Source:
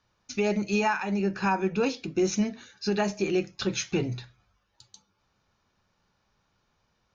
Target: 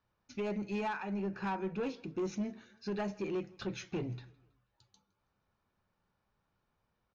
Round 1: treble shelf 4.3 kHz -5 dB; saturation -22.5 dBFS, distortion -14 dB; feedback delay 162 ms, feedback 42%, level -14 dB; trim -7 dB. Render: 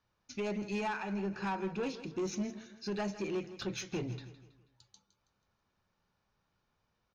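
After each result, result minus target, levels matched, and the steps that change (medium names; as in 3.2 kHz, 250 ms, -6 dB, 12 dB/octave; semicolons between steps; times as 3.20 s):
8 kHz band +7.0 dB; echo-to-direct +10.5 dB
change: treble shelf 4.3 kHz -16.5 dB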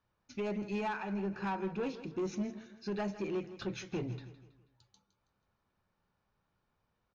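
echo-to-direct +10.5 dB
change: feedback delay 162 ms, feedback 42%, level -24.5 dB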